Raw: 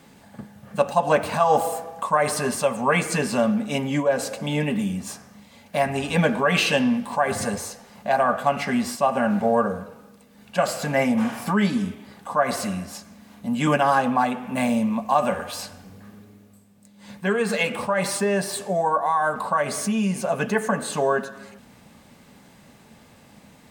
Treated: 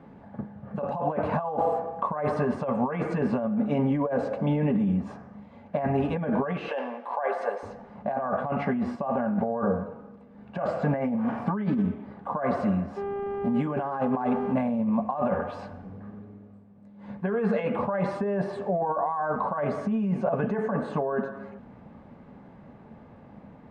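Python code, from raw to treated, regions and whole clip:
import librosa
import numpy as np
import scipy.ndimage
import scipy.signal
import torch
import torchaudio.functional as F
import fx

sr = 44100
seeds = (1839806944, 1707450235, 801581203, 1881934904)

y = fx.chain(x, sr, fx.highpass(hz=470.0, slope=24),
    fx.notch(hz=7200.0, q=13.0), at=(6.68, 7.63))
y = fx.delta_hold(y, sr, step_db=-41.0, at=(12.96, 14.52), fade=0.02)
y = fx.high_shelf(y, sr, hz=8900.0, db=10.5, at=(12.96, 14.52), fade=0.02)
y = fx.dmg_buzz(y, sr, base_hz=400.0, harmonics=8, level_db=-34.0, tilt_db=-8, odd_only=False, at=(12.96, 14.52), fade=0.02)
y = fx.over_compress(y, sr, threshold_db=-25.0, ratio=-1.0)
y = scipy.signal.sosfilt(scipy.signal.butter(2, 1100.0, 'lowpass', fs=sr, output='sos'), y)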